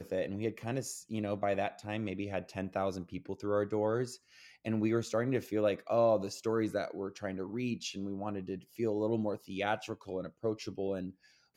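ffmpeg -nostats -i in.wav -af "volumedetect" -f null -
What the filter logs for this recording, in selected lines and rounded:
mean_volume: -34.7 dB
max_volume: -17.2 dB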